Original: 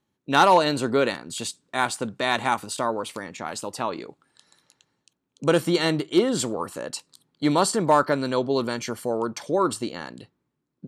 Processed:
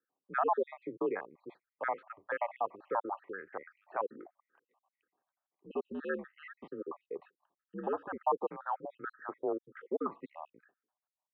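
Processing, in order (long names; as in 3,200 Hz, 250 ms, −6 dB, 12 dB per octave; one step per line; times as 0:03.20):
time-frequency cells dropped at random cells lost 61%
brickwall limiter −16 dBFS, peak gain reduction 9.5 dB
single-sideband voice off tune −91 Hz 490–2,000 Hz
wrong playback speed 25 fps video run at 24 fps
level −3 dB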